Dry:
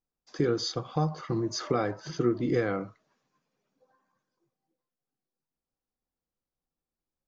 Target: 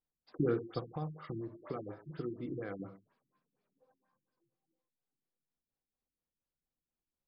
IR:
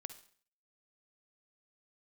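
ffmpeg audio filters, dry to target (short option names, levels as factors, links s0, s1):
-filter_complex "[0:a]asettb=1/sr,asplit=3[s0][s1][s2];[s0]atrim=end=0.794[s3];[s1]atrim=start=0.79:end=2.8,asetpts=PTS-STARTPTS,afade=t=in:d=0.004:c=qsin,afade=t=out:st=2.006:d=0.004:c=qsin,acompressor=threshold=0.0112:ratio=2[s4];[s2]atrim=start=2.796[s5];[s3][s4]acrossfade=d=0.004:c1=hsin:c2=qsin[s6];[s6][s5]acrossfade=d=0.004:c1=qsin:c2=hsin[s7];[1:a]atrim=start_sample=2205,afade=t=out:st=0.22:d=0.01,atrim=end_sample=10143[s8];[s7][s8]afir=irnorm=-1:irlink=0,afftfilt=real='re*lt(b*sr/1024,350*pow(5600/350,0.5+0.5*sin(2*PI*4.2*pts/sr)))':imag='im*lt(b*sr/1024,350*pow(5600/350,0.5+0.5*sin(2*PI*4.2*pts/sr)))':win_size=1024:overlap=0.75"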